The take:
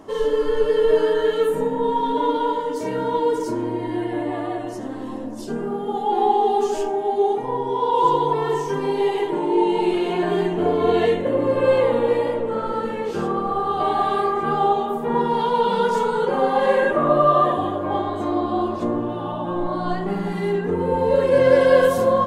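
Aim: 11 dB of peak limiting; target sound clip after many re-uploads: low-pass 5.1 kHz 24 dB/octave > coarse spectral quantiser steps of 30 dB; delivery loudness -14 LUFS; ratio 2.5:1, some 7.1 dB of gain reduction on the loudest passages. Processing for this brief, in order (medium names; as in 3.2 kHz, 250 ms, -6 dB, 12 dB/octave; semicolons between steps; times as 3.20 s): compression 2.5:1, threshold -20 dBFS; peak limiter -21 dBFS; low-pass 5.1 kHz 24 dB/octave; coarse spectral quantiser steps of 30 dB; trim +15.5 dB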